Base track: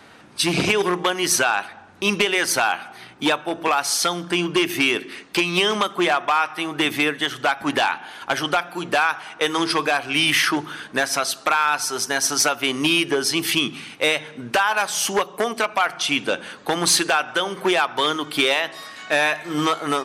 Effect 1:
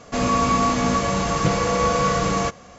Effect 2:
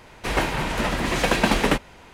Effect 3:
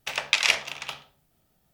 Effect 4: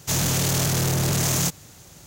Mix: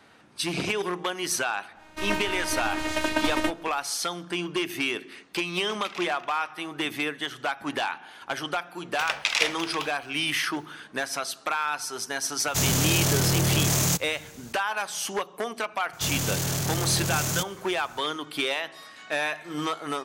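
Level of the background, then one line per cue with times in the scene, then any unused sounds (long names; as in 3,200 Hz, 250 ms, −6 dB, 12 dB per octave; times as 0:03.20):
base track −8.5 dB
0:01.73: mix in 2 −3.5 dB, fades 0.10 s + phases set to zero 310 Hz
0:05.52: mix in 3 −14 dB + low-pass filter 3,100 Hz 6 dB per octave
0:08.92: mix in 3 + brickwall limiter −6.5 dBFS
0:12.47: mix in 4 −1 dB
0:15.93: mix in 4 −5.5 dB
not used: 1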